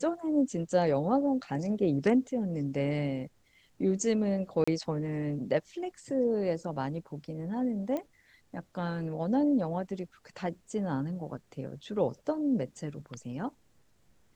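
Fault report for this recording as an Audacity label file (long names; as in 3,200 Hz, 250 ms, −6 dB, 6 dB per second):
4.640000	4.670000	drop-out 35 ms
7.970000	7.970000	click −22 dBFS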